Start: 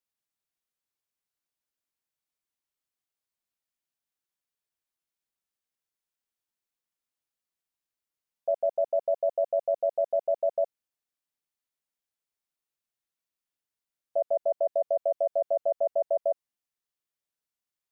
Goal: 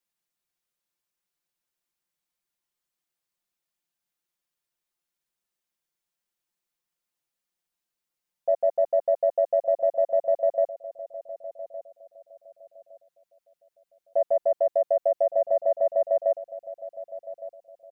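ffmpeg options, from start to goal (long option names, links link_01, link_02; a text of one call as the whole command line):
ffmpeg -i in.wav -filter_complex "[0:a]acontrast=54,aecho=1:1:5.7:0.65,asplit=2[link_01][link_02];[link_02]adelay=1162,lowpass=frequency=860:poles=1,volume=-13dB,asplit=2[link_03][link_04];[link_04]adelay=1162,lowpass=frequency=860:poles=1,volume=0.31,asplit=2[link_05][link_06];[link_06]adelay=1162,lowpass=frequency=860:poles=1,volume=0.31[link_07];[link_01][link_03][link_05][link_07]amix=inputs=4:normalize=0,volume=-4dB" out.wav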